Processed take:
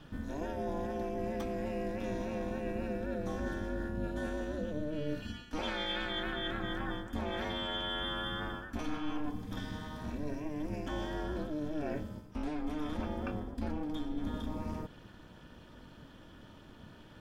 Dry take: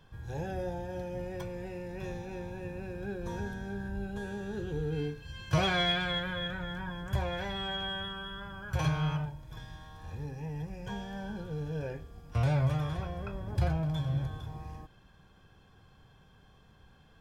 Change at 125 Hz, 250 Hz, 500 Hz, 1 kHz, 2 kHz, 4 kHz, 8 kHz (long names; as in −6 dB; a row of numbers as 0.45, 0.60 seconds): −10.0, +1.5, 0.0, −2.0, −3.5, −3.5, −4.0 decibels